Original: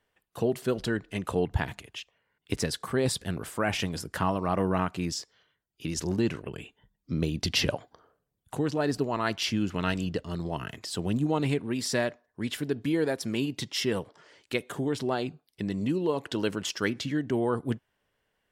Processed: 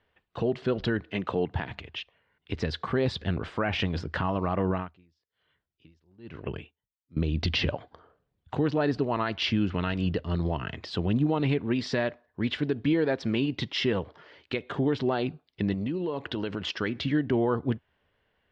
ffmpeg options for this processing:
-filter_complex "[0:a]asettb=1/sr,asplit=3[a][b][c];[a]atrim=end=1.004[d];[b]atrim=start=1:end=1.71,asetpts=PTS-STARTPTS,afade=t=in:d=0.004:c=qsin,afade=t=out:st=0.706:d=0.004:c=qsin,highpass=150[e];[c]atrim=start=1.706[f];[d][e]acrossfade=d=0.004:c1=hsin:c2=qsin[g];[g][f]acrossfade=d=0.004:c1=qsin:c2=hsin,asettb=1/sr,asplit=3[h][i][j];[h]atrim=end=4.684[k];[i]atrim=start=4.68:end=7.17,asetpts=PTS-STARTPTS,afade=t=in:d=0.004:c=qsin,afade=t=out:st=2.486:d=0.004:c=qsin,aeval=exprs='val(0)*pow(10,-40*(0.5-0.5*cos(2*PI*1.1*n/s))/20)':c=same[l];[j]atrim=start=7.166[m];[k][l]acrossfade=d=0.004:c1=hsin:c2=qsin[n];[n][m]acrossfade=d=0.004:c1=qsin:c2=hsin,asettb=1/sr,asplit=3[o][p][q];[o]atrim=end=15.734[r];[p]atrim=start=15.73:end=16.67,asetpts=PTS-STARTPTS,afade=t=in:d=0.004:c=qsin,afade=t=out:st=0.936:d=0.004:c=qsin,acompressor=threshold=-31dB:ratio=6:attack=3.2:release=140:knee=1:detection=peak[s];[q]atrim=start=16.666[t];[r][s]acrossfade=d=0.004:c1=hsin:c2=qsin[u];[u][t]acrossfade=d=0.004:c1=qsin:c2=hsin,lowpass=f=4k:w=0.5412,lowpass=f=4k:w=1.3066,equalizer=f=79:t=o:w=0.37:g=9,alimiter=limit=-20.5dB:level=0:latency=1:release=164,volume=4dB"

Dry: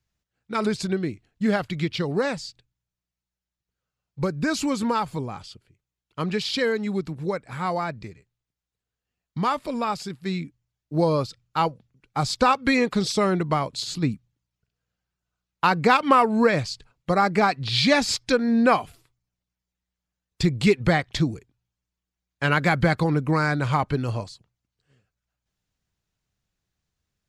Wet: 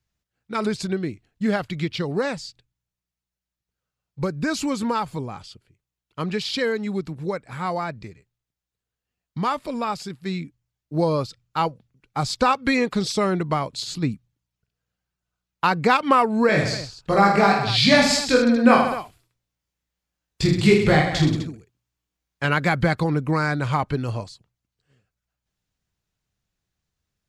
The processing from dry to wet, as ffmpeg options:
-filter_complex "[0:a]asettb=1/sr,asplit=3[a][b][c];[a]atrim=end=16.474[d];[b]atrim=start=16.47:end=22.45,asetpts=PTS-STARTPTS,afade=t=in:d=0.004:c=qsin,afade=t=out:st=5.976:d=0.004:c=qsin,aecho=1:1:20|46|79.8|123.7|180.9|255.1:0.794|0.631|0.501|0.398|0.316|0.251,atrim=end_sample=263718[e];[c]atrim=start=22.446[f];[d][e]acrossfade=d=0.004:c1=hsin:c2=qsin[g];[g][f]acrossfade=d=0.004:c1=qsin:c2=hsin"

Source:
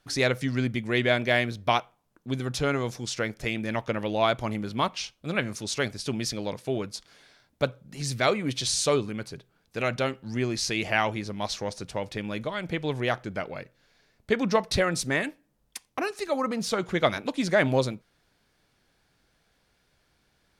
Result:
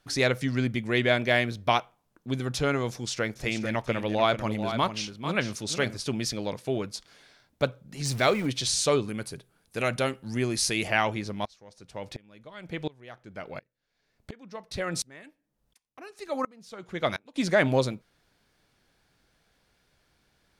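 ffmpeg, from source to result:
-filter_complex "[0:a]asettb=1/sr,asplit=3[a][b][c];[a]atrim=end=2.914[d];[b]atrim=start=2.91:end=6.04,asetpts=PTS-STARTPTS,afade=t=in:d=0.004:c=qsin,afade=t=out:st=3.126:d=0.004:c=qsin,aecho=1:1:443:0.355,atrim=end_sample=138033[e];[c]atrim=start=6.036[f];[d][e]acrossfade=d=0.004:c1=hsin:c2=qsin[g];[g][f]acrossfade=d=0.004:c1=qsin:c2=hsin,asettb=1/sr,asplit=3[h][i][j];[h]atrim=end=8.054[k];[i]atrim=start=8.05:end=8.47,asetpts=PTS-STARTPTS,afade=t=in:d=0.004:c=qsin,afade=t=out:st=0.416:d=0.004:c=qsin,aeval=exprs='val(0)+0.5*0.015*sgn(val(0))':c=same[l];[j]atrim=start=8.466[m];[k][l]acrossfade=d=0.004:c1=hsin:c2=qsin[n];[n][m]acrossfade=d=0.004:c1=qsin:c2=hsin,asettb=1/sr,asplit=3[o][p][q];[o]atrim=end=9.084[r];[p]atrim=start=9.08:end=10.88,asetpts=PTS-STARTPTS,afade=t=in:d=0.004:c=qsin,afade=t=out:st=1.796:d=0.004:c=qsin,equalizer=f=10k:t=o:w=0.59:g=12.5[s];[q]atrim=start=10.876[t];[r][s]acrossfade=d=0.004:c1=hsin:c2=qsin[u];[u][t]acrossfade=d=0.004:c1=qsin:c2=hsin,asettb=1/sr,asplit=3[v][w][x];[v]atrim=end=11.454[y];[w]atrim=start=11.45:end=17.36,asetpts=PTS-STARTPTS,afade=t=in:d=0.004:c=qsin,afade=t=out:st=5.906:d=0.004:c=qsin,aeval=exprs='val(0)*pow(10,-27*if(lt(mod(-1.4*n/s,1),2*abs(-1.4)/1000),1-mod(-1.4*n/s,1)/(2*abs(-1.4)/1000),(mod(-1.4*n/s,1)-2*abs(-1.4)/1000)/(1-2*abs(-1.4)/1000))/20)':c=same[z];[x]atrim=start=17.356[aa];[y][z]acrossfade=d=0.004:c1=hsin:c2=qsin[ab];[ab][aa]acrossfade=d=0.004:c1=qsin:c2=hsin"

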